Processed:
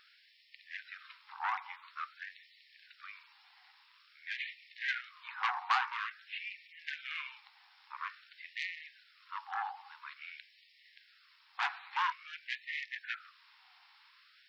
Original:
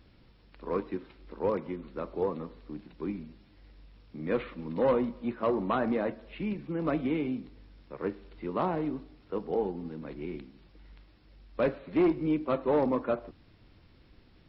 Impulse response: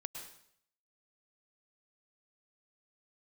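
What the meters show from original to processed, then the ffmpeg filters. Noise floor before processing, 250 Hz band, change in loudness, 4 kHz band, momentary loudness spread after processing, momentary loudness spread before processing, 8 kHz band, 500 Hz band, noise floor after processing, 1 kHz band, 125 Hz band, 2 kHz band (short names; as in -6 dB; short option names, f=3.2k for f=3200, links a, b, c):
-59 dBFS, under -40 dB, -7.5 dB, +8.0 dB, 18 LU, 15 LU, n/a, under -35 dB, -65 dBFS, -1.5 dB, under -40 dB, +6.5 dB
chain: -af "aeval=exprs='0.168*sin(PI/2*2.51*val(0)/0.168)':c=same,afftfilt=real='re*gte(b*sr/1024,710*pow(1800/710,0.5+0.5*sin(2*PI*0.49*pts/sr)))':imag='im*gte(b*sr/1024,710*pow(1800/710,0.5+0.5*sin(2*PI*0.49*pts/sr)))':win_size=1024:overlap=0.75,volume=-5.5dB"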